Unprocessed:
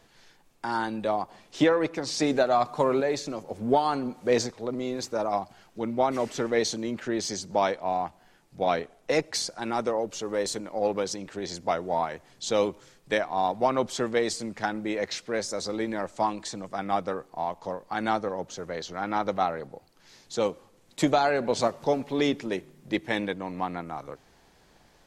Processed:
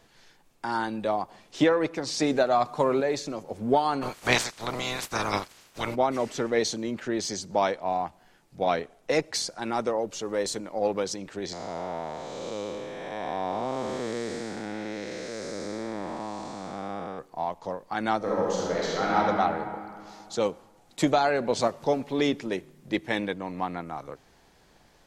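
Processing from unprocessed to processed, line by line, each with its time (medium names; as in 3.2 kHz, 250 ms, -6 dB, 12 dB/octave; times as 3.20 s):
4.01–5.94 s: spectral peaks clipped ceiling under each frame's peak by 28 dB
11.53–17.19 s: spectral blur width 476 ms
18.17–19.17 s: reverb throw, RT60 2.4 s, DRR -6 dB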